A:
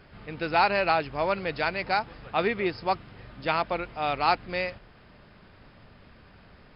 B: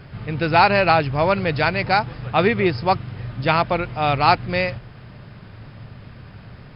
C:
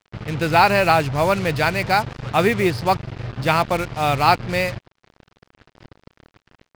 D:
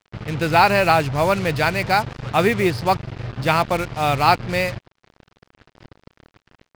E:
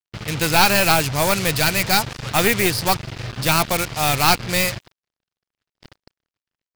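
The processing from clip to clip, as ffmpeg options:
-af "equalizer=f=120:w=1.6:g=13.5,volume=2.37"
-af "acrusher=bits=4:mix=0:aa=0.5"
-af anull
-af "crystalizer=i=5.5:c=0,agate=range=0.0178:threshold=0.00794:ratio=16:detection=peak,aeval=exprs='clip(val(0),-1,0.119)':c=same,volume=0.891"

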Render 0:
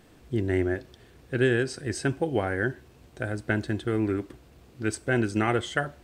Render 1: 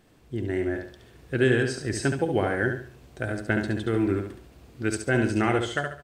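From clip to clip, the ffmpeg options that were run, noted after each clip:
-af "dynaudnorm=f=330:g=5:m=2,aecho=1:1:70|140|210|280:0.501|0.17|0.0579|0.0197,volume=0.596"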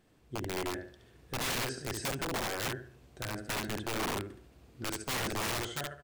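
-af "aeval=exprs='(mod(11.2*val(0)+1,2)-1)/11.2':c=same,volume=0.422"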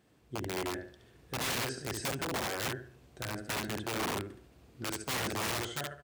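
-af "highpass=57"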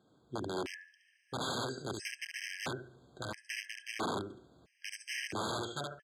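-af "highpass=120,lowpass=7200,afftfilt=real='re*gt(sin(2*PI*0.75*pts/sr)*(1-2*mod(floor(b*sr/1024/1600),2)),0)':imag='im*gt(sin(2*PI*0.75*pts/sr)*(1-2*mod(floor(b*sr/1024/1600),2)),0)':win_size=1024:overlap=0.75"

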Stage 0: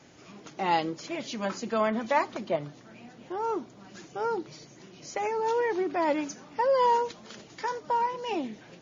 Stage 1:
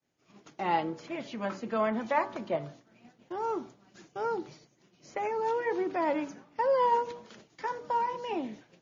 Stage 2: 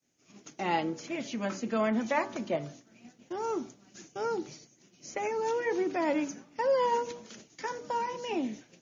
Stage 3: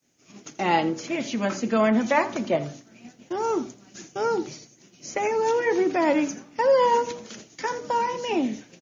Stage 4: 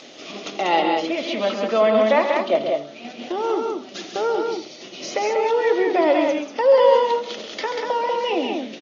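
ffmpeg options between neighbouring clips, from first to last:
-filter_complex "[0:a]bandreject=f=95.91:t=h:w=4,bandreject=f=191.82:t=h:w=4,bandreject=f=287.73:t=h:w=4,bandreject=f=383.64:t=h:w=4,bandreject=f=479.55:t=h:w=4,bandreject=f=575.46:t=h:w=4,bandreject=f=671.37:t=h:w=4,bandreject=f=767.28:t=h:w=4,bandreject=f=863.19:t=h:w=4,bandreject=f=959.1:t=h:w=4,bandreject=f=1055.01:t=h:w=4,bandreject=f=1150.92:t=h:w=4,bandreject=f=1246.83:t=h:w=4,bandreject=f=1342.74:t=h:w=4,bandreject=f=1438.65:t=h:w=4,bandreject=f=1534.56:t=h:w=4,bandreject=f=1630.47:t=h:w=4,bandreject=f=1726.38:t=h:w=4,agate=range=0.0224:threshold=0.00891:ratio=3:detection=peak,acrossover=split=580|2900[s0][s1][s2];[s2]acompressor=threshold=0.00178:ratio=6[s3];[s0][s1][s3]amix=inputs=3:normalize=0,volume=0.794"
-af "equalizer=f=250:t=o:w=0.67:g=5,equalizer=f=1000:t=o:w=0.67:g=-4,equalizer=f=2500:t=o:w=0.67:g=3,equalizer=f=6300:t=o:w=0.67:g=12"
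-af "aecho=1:1:83:0.133,volume=2.37"
-af "highpass=420,equalizer=f=610:t=q:w=4:g=3,equalizer=f=940:t=q:w=4:g=-5,equalizer=f=1600:t=q:w=4:g=-9,equalizer=f=2300:t=q:w=4:g=-4,equalizer=f=3500:t=q:w=4:g=4,lowpass=f=4300:w=0.5412,lowpass=f=4300:w=1.3066,acompressor=mode=upward:threshold=0.0447:ratio=2.5,aecho=1:1:134.1|189.5:0.398|0.631,volume=1.78"

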